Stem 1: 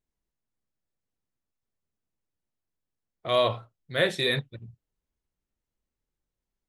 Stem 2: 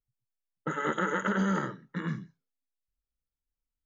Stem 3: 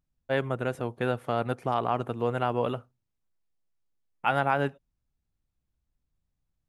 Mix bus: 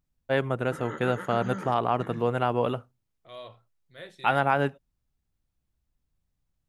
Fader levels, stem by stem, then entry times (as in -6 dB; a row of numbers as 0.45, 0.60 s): -20.0, -8.5, +2.0 dB; 0.00, 0.05, 0.00 s